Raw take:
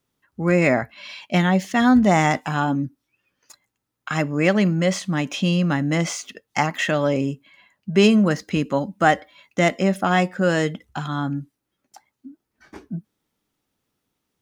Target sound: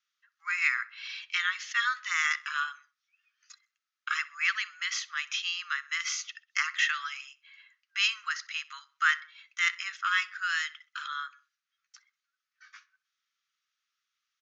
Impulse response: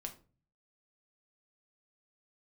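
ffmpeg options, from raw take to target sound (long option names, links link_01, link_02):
-filter_complex "[0:a]asuperpass=centerf=2900:order=20:qfactor=0.52,asplit=2[link_01][link_02];[link_02]adelay=64,lowpass=frequency=3900:poles=1,volume=-19.5dB,asplit=2[link_03][link_04];[link_04]adelay=64,lowpass=frequency=3900:poles=1,volume=0.45,asplit=2[link_05][link_06];[link_06]adelay=64,lowpass=frequency=3900:poles=1,volume=0.45[link_07];[link_01][link_03][link_05][link_07]amix=inputs=4:normalize=0,volume=-2dB"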